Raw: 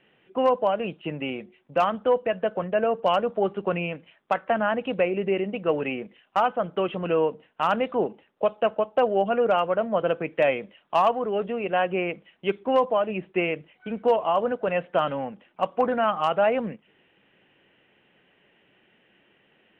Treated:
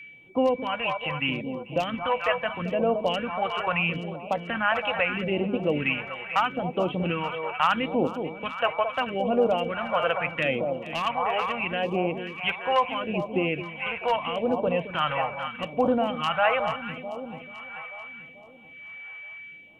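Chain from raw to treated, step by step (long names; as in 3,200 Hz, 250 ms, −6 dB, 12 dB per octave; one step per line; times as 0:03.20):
thirty-one-band graphic EQ 200 Hz −7 dB, 400 Hz −11 dB, 630 Hz −4 dB
delay that swaps between a low-pass and a high-pass 219 ms, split 1,000 Hz, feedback 73%, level −8.5 dB
steady tone 2,300 Hz −47 dBFS
in parallel at 0 dB: brickwall limiter −20 dBFS, peak gain reduction 9 dB
on the sum: all-pass phaser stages 2, 0.77 Hz, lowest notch 240–1,800 Hz
level +1.5 dB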